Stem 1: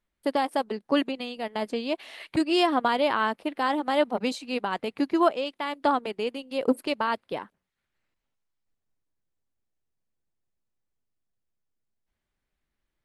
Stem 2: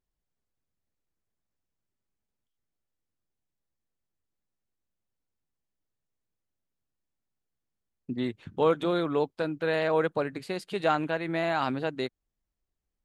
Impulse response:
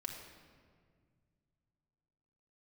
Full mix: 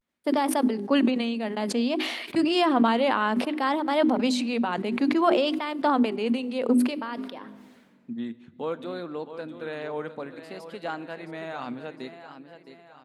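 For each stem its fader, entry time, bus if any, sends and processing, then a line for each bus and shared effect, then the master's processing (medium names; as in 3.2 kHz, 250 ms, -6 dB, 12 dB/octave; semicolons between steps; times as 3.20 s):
-1.0 dB, 0.00 s, send -16.5 dB, no echo send, treble shelf 10 kHz -7 dB; hum notches 50/100/150/200/250/300/350/400 Hz; decay stretcher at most 39 dB/s; auto duck -23 dB, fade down 1.60 s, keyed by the second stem
-9.5 dB, 0.00 s, send -9.5 dB, echo send -9 dB, none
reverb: on, RT60 1.9 s, pre-delay 4 ms
echo: feedback delay 685 ms, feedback 47%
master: high-pass 130 Hz; peaking EQ 240 Hz +9 dB 0.21 oct; vibrato 0.58 Hz 78 cents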